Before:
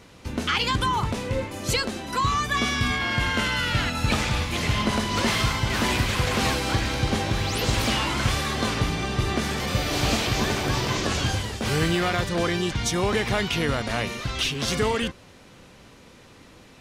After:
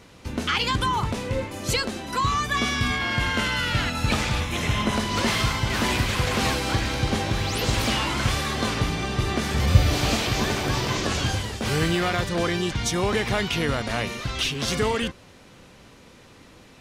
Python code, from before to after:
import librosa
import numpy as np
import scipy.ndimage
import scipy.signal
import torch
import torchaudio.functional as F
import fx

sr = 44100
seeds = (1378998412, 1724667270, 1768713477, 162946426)

y = fx.notch(x, sr, hz=4600.0, q=5.0, at=(4.4, 4.95))
y = fx.peak_eq(y, sr, hz=79.0, db=14.5, octaves=1.5, at=(9.54, 9.96))